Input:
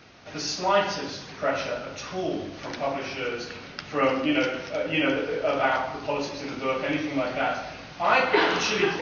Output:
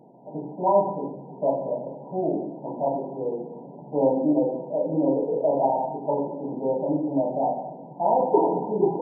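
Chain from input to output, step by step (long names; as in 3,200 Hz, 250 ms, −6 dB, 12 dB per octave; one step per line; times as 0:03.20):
brick-wall band-pass 120–1,000 Hz
level +3.5 dB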